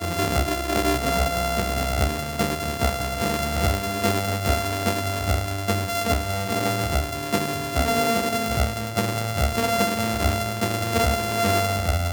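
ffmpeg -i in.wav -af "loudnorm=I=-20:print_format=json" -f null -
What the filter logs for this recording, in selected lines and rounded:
"input_i" : "-23.4",
"input_tp" : "-5.1",
"input_lra" : "1.3",
"input_thresh" : "-33.4",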